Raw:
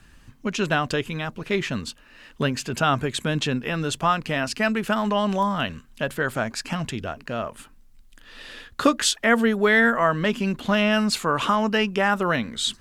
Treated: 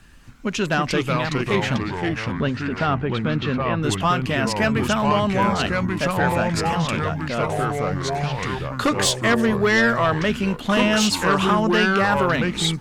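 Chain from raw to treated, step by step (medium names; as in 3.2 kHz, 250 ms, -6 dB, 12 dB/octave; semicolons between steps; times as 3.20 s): sine folder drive 5 dB, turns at -6.5 dBFS; 1.75–3.83 s: distance through air 300 m; ever faster or slower copies 237 ms, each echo -3 st, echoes 3; trim -6.5 dB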